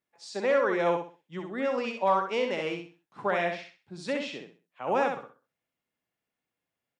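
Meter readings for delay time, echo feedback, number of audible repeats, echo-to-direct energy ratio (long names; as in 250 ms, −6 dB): 64 ms, 29%, 3, −4.5 dB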